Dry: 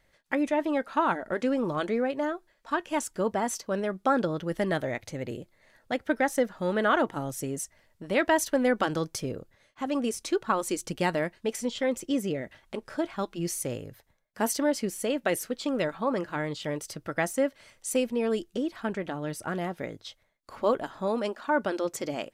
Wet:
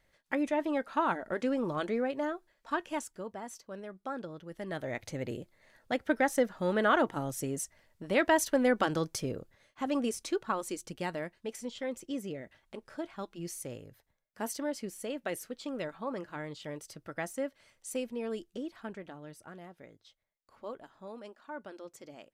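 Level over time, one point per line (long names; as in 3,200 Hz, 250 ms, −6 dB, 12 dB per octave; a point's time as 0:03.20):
0:02.86 −4 dB
0:03.26 −14 dB
0:04.57 −14 dB
0:05.02 −2 dB
0:09.92 −2 dB
0:10.93 −9 dB
0:18.70 −9 dB
0:19.59 −17 dB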